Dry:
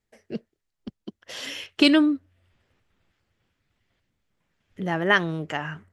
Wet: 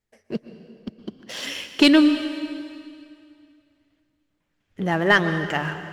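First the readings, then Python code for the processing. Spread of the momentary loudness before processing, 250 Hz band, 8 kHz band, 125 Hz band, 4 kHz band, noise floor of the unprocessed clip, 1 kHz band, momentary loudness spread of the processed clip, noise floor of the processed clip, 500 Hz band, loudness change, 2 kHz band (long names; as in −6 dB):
20 LU, +3.5 dB, +4.5 dB, +4.0 dB, +2.5 dB, −81 dBFS, +3.0 dB, 22 LU, −74 dBFS, +3.5 dB, +2.5 dB, +3.0 dB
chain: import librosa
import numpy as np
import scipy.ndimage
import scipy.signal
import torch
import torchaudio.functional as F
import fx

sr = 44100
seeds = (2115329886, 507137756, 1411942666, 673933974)

y = fx.leveller(x, sr, passes=1)
y = fx.rev_plate(y, sr, seeds[0], rt60_s=2.4, hf_ratio=0.95, predelay_ms=105, drr_db=9.5)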